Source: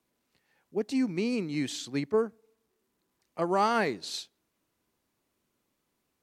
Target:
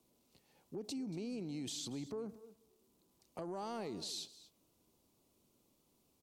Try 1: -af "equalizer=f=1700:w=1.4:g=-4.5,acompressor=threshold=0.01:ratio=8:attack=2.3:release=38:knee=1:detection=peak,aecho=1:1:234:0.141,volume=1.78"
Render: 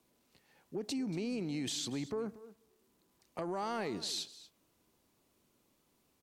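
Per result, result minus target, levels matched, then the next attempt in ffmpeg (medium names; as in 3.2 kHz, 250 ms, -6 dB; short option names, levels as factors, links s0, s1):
2 kHz band +5.5 dB; compression: peak gain reduction -4.5 dB
-af "equalizer=f=1700:w=1.4:g=-15,acompressor=threshold=0.01:ratio=8:attack=2.3:release=38:knee=1:detection=peak,aecho=1:1:234:0.141,volume=1.78"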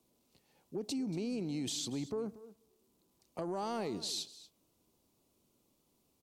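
compression: peak gain reduction -5.5 dB
-af "equalizer=f=1700:w=1.4:g=-15,acompressor=threshold=0.00501:ratio=8:attack=2.3:release=38:knee=1:detection=peak,aecho=1:1:234:0.141,volume=1.78"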